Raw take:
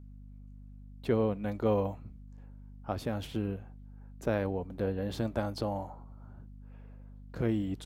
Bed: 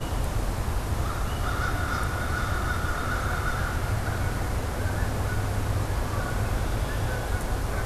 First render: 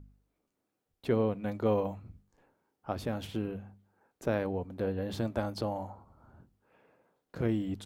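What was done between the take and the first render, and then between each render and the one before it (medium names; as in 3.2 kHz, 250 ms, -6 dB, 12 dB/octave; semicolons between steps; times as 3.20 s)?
de-hum 50 Hz, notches 5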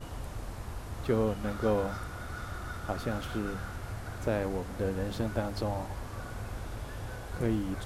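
add bed -12 dB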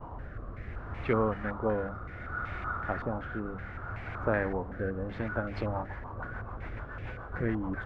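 rotary cabinet horn 0.65 Hz, later 7 Hz, at 4.99 s; step-sequenced low-pass 5.3 Hz 990–2300 Hz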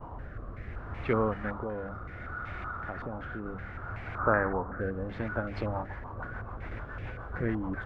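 1.63–3.46 s: compression 2.5:1, threshold -34 dBFS; 4.18–4.81 s: resonant low-pass 1.3 kHz, resonance Q 3.3; 6.71–7.32 s: three bands compressed up and down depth 100%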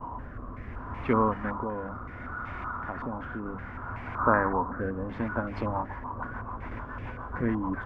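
graphic EQ with 31 bands 250 Hz +10 dB, 1 kHz +12 dB, 4 kHz -5 dB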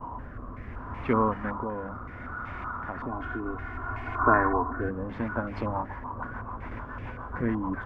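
3.07–4.89 s: comb 2.8 ms, depth 90%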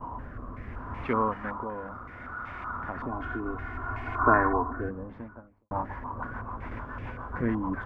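1.06–2.69 s: bass shelf 420 Hz -6 dB; 4.43–5.71 s: studio fade out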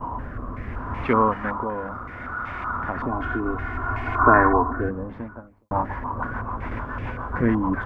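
trim +7.5 dB; peak limiter -2 dBFS, peak gain reduction 2.5 dB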